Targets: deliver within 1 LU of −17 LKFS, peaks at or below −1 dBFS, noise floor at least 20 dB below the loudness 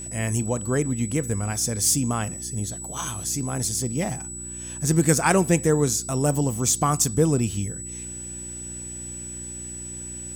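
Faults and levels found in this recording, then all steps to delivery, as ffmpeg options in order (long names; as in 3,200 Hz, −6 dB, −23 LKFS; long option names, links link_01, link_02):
mains hum 60 Hz; hum harmonics up to 360 Hz; level of the hum −41 dBFS; interfering tone 7,900 Hz; level of the tone −34 dBFS; integrated loudness −24.5 LKFS; sample peak −4.5 dBFS; target loudness −17.0 LKFS
→ -af "bandreject=frequency=60:width_type=h:width=4,bandreject=frequency=120:width_type=h:width=4,bandreject=frequency=180:width_type=h:width=4,bandreject=frequency=240:width_type=h:width=4,bandreject=frequency=300:width_type=h:width=4,bandreject=frequency=360:width_type=h:width=4"
-af "bandreject=frequency=7900:width=30"
-af "volume=7.5dB,alimiter=limit=-1dB:level=0:latency=1"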